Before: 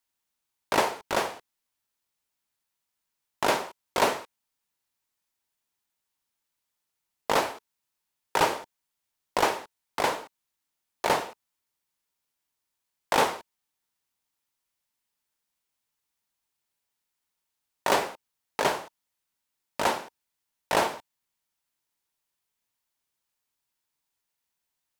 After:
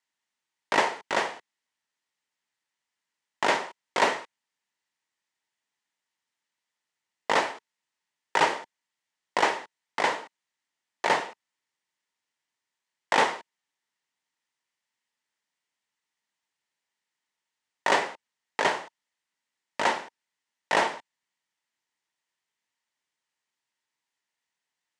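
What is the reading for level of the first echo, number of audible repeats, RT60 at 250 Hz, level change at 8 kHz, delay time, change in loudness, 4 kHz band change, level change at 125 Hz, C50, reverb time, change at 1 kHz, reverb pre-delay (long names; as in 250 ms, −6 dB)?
no echo audible, no echo audible, no reverb audible, −3.0 dB, no echo audible, +1.0 dB, +0.5 dB, −5.0 dB, no reverb audible, no reverb audible, +1.0 dB, no reverb audible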